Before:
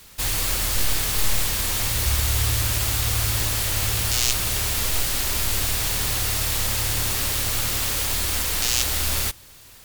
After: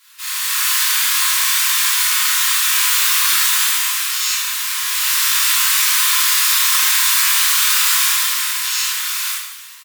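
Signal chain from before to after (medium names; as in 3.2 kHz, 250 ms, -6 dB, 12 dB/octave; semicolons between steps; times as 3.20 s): level rider gain up to 11 dB; steep high-pass 990 Hz 72 dB/octave; treble shelf 4.7 kHz -4 dB; on a send: reverse bouncing-ball echo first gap 30 ms, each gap 1.5×, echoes 5; on the sum: gated-style reverb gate 120 ms flat, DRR -7 dB; bit-crushed delay 137 ms, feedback 35%, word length 7-bit, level -12.5 dB; trim -5 dB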